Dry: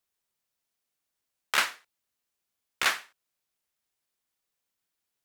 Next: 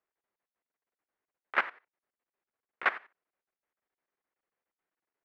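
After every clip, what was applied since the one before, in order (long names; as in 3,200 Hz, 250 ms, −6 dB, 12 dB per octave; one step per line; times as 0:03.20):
drawn EQ curve 120 Hz 0 dB, 390 Hz +12 dB, 2,000 Hz +8 dB, 7,100 Hz −27 dB
output level in coarse steps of 17 dB
level −6 dB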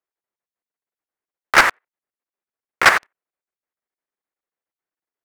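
leveller curve on the samples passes 5
level +6 dB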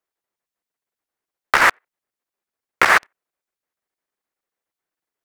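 compressor whose output falls as the input rises −13 dBFS, ratio −0.5
level +2 dB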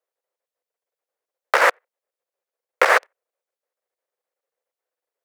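high-pass with resonance 510 Hz, resonance Q 4.9
level −4 dB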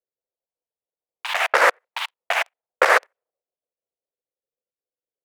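low-pass that shuts in the quiet parts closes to 330 Hz, open at −17 dBFS
delay with pitch and tempo change per echo 192 ms, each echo +5 semitones, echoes 2, each echo −6 dB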